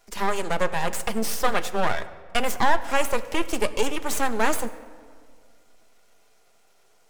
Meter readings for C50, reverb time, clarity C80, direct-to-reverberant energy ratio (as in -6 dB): 15.0 dB, 1.9 s, 16.0 dB, 8.5 dB